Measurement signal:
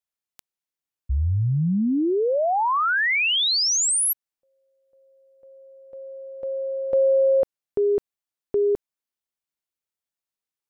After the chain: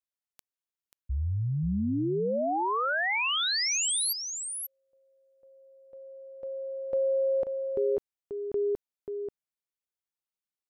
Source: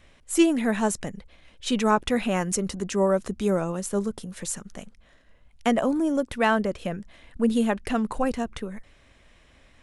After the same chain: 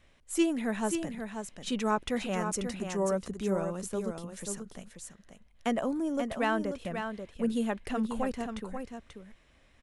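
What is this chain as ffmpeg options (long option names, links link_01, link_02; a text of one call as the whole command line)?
ffmpeg -i in.wav -af "aecho=1:1:536:0.447,volume=-7.5dB" out.wav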